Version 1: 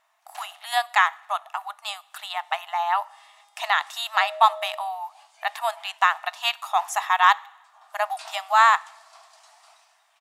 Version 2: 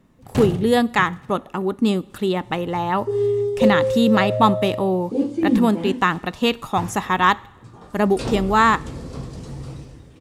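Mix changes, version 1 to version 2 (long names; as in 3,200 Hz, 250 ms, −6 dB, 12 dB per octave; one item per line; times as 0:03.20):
first sound +10.0 dB
second sound +6.5 dB
master: remove linear-phase brick-wall high-pass 620 Hz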